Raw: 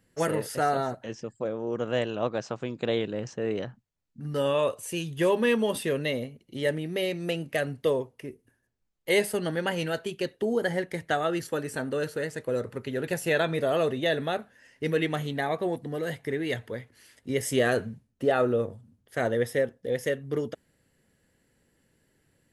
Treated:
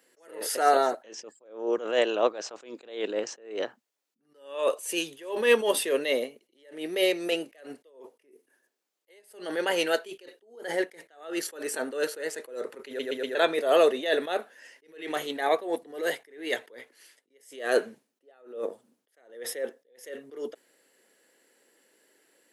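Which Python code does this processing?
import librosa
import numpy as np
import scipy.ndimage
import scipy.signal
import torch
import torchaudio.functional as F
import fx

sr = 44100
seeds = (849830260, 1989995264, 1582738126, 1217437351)

y = fx.edit(x, sr, fx.stutter_over(start_s=12.87, slice_s=0.12, count=4),
    fx.fade_out_to(start_s=16.71, length_s=0.59, floor_db=-18.5), tone=tone)
y = scipy.signal.sosfilt(scipy.signal.butter(4, 350.0, 'highpass', fs=sr, output='sos'), y)
y = fx.peak_eq(y, sr, hz=1100.0, db=-2.5, octaves=2.8)
y = fx.attack_slew(y, sr, db_per_s=120.0)
y = y * librosa.db_to_amplitude(8.0)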